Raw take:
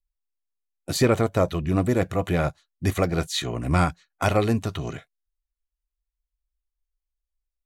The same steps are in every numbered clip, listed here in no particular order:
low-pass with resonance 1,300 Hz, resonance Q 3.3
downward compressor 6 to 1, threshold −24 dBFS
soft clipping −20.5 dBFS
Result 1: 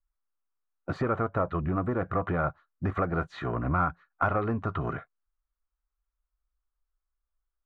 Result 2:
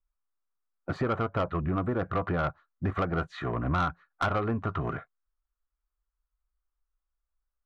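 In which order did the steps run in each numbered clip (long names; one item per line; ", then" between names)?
downward compressor, then soft clipping, then low-pass with resonance
downward compressor, then low-pass with resonance, then soft clipping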